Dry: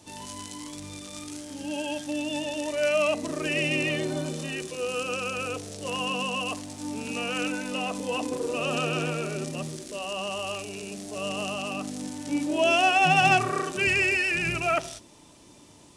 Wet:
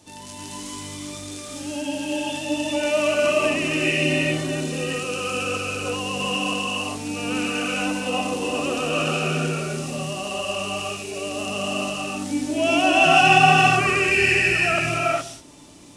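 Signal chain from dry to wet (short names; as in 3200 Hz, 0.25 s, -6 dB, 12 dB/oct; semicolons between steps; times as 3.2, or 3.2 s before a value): notch 970 Hz, Q 19; non-linear reverb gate 0.44 s rising, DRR -4.5 dB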